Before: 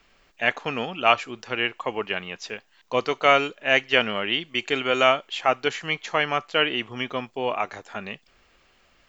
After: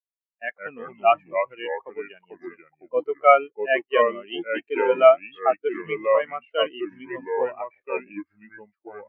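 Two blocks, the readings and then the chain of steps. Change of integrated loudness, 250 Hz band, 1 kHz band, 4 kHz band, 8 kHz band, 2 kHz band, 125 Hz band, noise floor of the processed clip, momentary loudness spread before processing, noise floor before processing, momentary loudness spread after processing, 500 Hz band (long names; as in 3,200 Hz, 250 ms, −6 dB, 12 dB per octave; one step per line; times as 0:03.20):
+1.0 dB, −3.0 dB, +1.5 dB, −11.0 dB, can't be measured, −5.5 dB, below −10 dB, below −85 dBFS, 15 LU, −62 dBFS, 20 LU, +5.0 dB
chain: leveller curve on the samples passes 1
delay with pitch and tempo change per echo 90 ms, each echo −3 semitones, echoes 2
every bin expanded away from the loudest bin 2.5 to 1
level −1 dB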